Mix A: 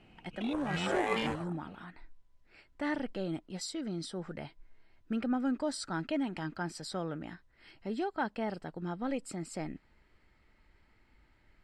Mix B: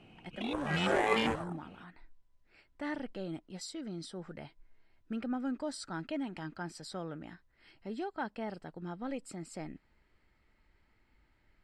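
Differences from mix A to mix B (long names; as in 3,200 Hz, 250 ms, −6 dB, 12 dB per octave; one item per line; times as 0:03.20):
speech −4.0 dB
background +3.0 dB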